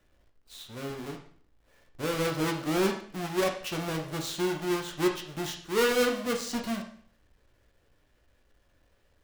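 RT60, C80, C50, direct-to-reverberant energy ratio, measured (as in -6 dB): 0.55 s, 11.5 dB, 7.5 dB, 1.5 dB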